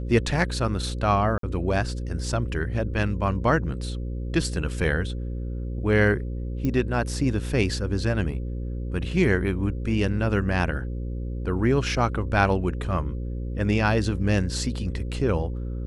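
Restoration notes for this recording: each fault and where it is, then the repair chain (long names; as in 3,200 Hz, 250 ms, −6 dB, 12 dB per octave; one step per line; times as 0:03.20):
mains buzz 60 Hz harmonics 9 −30 dBFS
0:01.38–0:01.43: drop-out 53 ms
0:06.65: click −16 dBFS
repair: click removal
hum removal 60 Hz, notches 9
repair the gap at 0:01.38, 53 ms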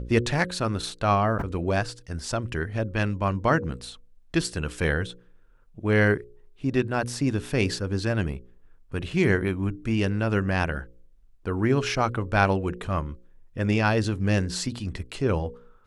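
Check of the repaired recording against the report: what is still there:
none of them is left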